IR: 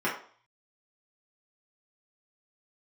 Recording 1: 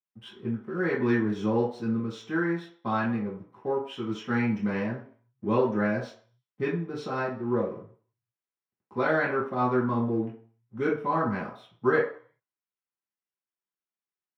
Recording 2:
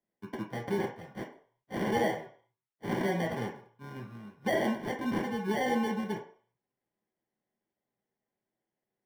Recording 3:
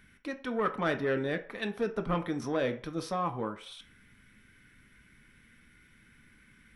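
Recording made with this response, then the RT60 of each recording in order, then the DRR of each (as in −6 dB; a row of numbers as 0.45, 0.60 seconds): 1; 0.45, 0.45, 0.45 seconds; −8.0, −1.5, 6.0 decibels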